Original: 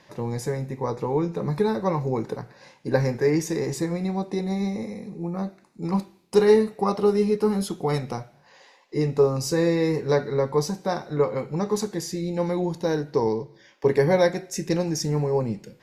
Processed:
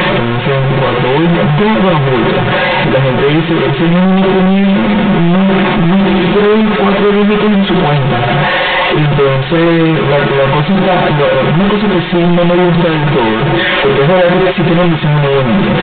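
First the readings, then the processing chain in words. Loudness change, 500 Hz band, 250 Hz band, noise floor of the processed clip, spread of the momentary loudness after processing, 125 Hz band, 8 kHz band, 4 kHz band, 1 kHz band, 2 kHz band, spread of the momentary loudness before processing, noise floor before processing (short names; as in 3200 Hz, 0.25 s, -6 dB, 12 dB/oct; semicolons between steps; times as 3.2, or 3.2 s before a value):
+15.0 dB, +12.0 dB, +16.5 dB, -13 dBFS, 2 LU, +17.0 dB, under -25 dB, +21.5 dB, +18.5 dB, +23.5 dB, 10 LU, -57 dBFS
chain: delta modulation 64 kbps, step -19.5 dBFS; comb 5.5 ms, depth 86%; sample leveller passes 5; downsampling 8000 Hz; gain -1.5 dB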